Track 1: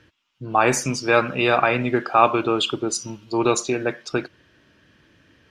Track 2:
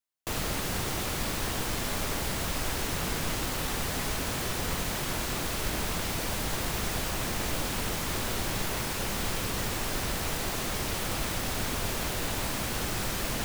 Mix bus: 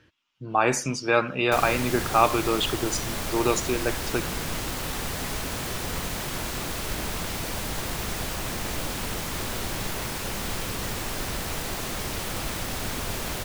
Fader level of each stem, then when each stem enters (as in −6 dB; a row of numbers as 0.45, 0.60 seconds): −4.0, +0.5 decibels; 0.00, 1.25 seconds